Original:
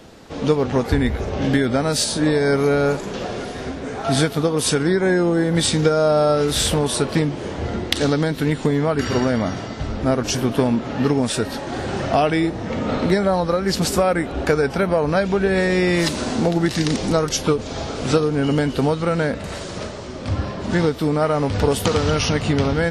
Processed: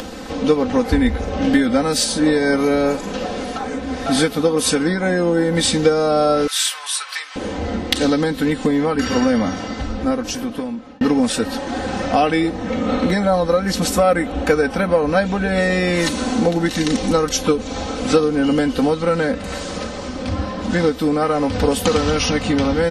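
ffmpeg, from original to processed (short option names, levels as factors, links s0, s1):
-filter_complex "[0:a]asettb=1/sr,asplit=3[s0][s1][s2];[s0]atrim=end=6.474[s3];[s1]atrim=start=6.47:end=7.36,asetpts=PTS-STARTPTS,afade=t=in:d=0.004:c=qsin,afade=t=out:st=0.886:d=0.004:c=qsin,highpass=f=1200:w=0.5412,highpass=f=1200:w=1.3066[s4];[s2]atrim=start=7.356[s5];[s3][s4]acrossfade=d=0.004:c1=hsin:c2=qsin[s6];[s6][s5]acrossfade=d=0.004:c1=qsin:c2=hsin,asettb=1/sr,asplit=3[s7][s8][s9];[s7]atrim=end=12.574[s10];[s8]atrim=start=12.57:end=18.04,asetpts=PTS-STARTPTS,afade=t=in:d=0.004:c=qsin,afade=t=out:st=5.466:d=0.004:c=qsin,bandreject=f=4900:w=15[s11];[s9]atrim=start=18.036[s12];[s10][s11]acrossfade=d=0.004:c1=hsin:c2=qsin[s13];[s13][s12]acrossfade=d=0.004:c1=qsin:c2=hsin,asplit=4[s14][s15][s16][s17];[s14]atrim=end=3.562[s18];[s15]atrim=start=3.558:end=4.062,asetpts=PTS-STARTPTS,areverse[s19];[s16]atrim=start=4.058:end=11.01,asetpts=PTS-STARTPTS,afade=t=out:st=5.692:d=1.26[s20];[s17]atrim=start=11.01,asetpts=PTS-STARTPTS,afade=t=in:d=0.004:c=hsin[s21];[s18][s19]acrossfade=d=0.004:c1=hsin:c2=hsin[s22];[s20][s21]concat=n=2:v=0:a=1[s23];[s22][s23]acrossfade=d=0.004:c1=hsin:c2=hsin,aecho=1:1:3.9:0.75,acompressor=mode=upward:threshold=0.0891:ratio=2.5"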